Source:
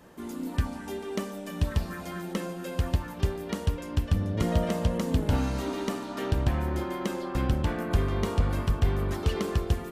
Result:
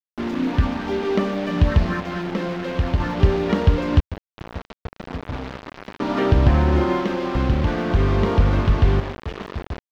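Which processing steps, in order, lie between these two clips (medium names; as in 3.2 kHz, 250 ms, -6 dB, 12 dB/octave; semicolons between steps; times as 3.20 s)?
treble shelf 5.2 kHz -2.5 dB; in parallel at +1.5 dB: peak limiter -25 dBFS, peak gain reduction 12 dB; on the sum: random-step tremolo 1 Hz, depth 90%; word length cut 6-bit, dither none; distance through air 240 m; trim +8 dB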